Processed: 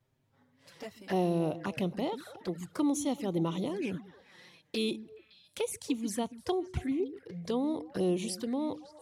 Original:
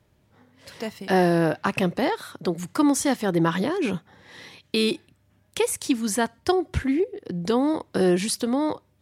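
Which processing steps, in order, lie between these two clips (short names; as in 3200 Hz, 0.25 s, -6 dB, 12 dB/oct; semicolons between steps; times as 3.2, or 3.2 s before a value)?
delay with a stepping band-pass 0.141 s, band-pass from 230 Hz, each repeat 1.4 oct, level -10 dB; envelope flanger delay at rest 7.8 ms, full sweep at -20 dBFS; gain -8.5 dB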